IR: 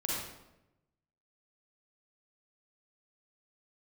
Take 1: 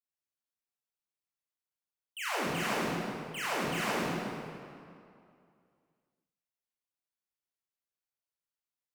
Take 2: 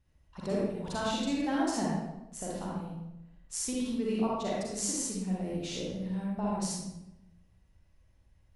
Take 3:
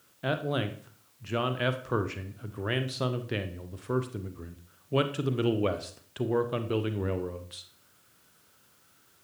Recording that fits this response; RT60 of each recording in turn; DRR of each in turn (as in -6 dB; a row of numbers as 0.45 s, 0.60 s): 2; 2.4 s, 0.95 s, 0.50 s; -9.0 dB, -5.0 dB, 9.0 dB